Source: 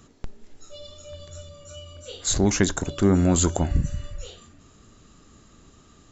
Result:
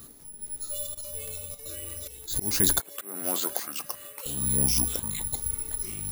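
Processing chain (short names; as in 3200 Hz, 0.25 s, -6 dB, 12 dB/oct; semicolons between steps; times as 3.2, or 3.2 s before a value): limiter -14.5 dBFS, peak gain reduction 8.5 dB; auto swell 0.31 s; 0.86–2.29 level quantiser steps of 15 dB; echoes that change speed 0.198 s, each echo -5 st, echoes 2, each echo -6 dB; 2.8–4.26 BPF 530–3900 Hz; careless resampling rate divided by 4×, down none, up zero stuff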